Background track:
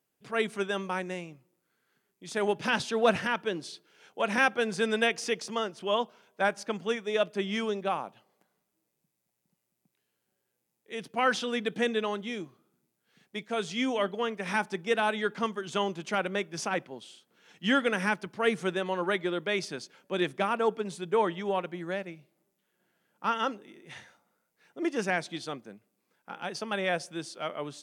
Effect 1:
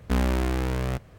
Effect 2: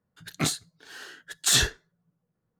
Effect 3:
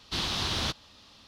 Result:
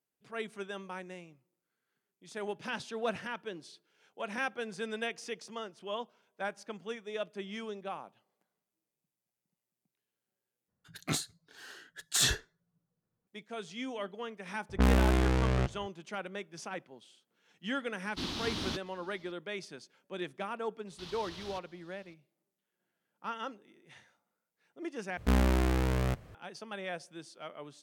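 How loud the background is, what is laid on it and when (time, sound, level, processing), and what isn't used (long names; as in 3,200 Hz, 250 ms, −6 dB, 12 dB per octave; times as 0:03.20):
background track −10 dB
0:10.68: overwrite with 2 −6.5 dB
0:14.69: mix in 1 −1 dB + low-pass that shuts in the quiet parts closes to 790 Hz, open at −19.5 dBFS
0:18.05: mix in 3 −8.5 dB + parametric band 270 Hz +12 dB 0.88 octaves
0:20.87: mix in 3 −12.5 dB + brickwall limiter −26 dBFS
0:25.17: overwrite with 1 −2.5 dB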